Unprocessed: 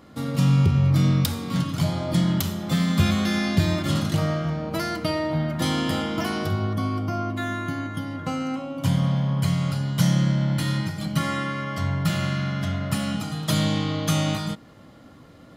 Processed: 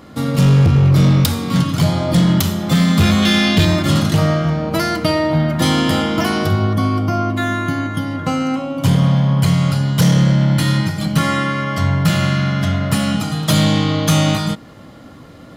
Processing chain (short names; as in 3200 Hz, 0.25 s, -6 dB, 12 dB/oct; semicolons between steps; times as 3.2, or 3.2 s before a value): 3.22–3.65 bell 3100 Hz +9.5 dB 0.66 oct; overloaded stage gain 16.5 dB; gain +9 dB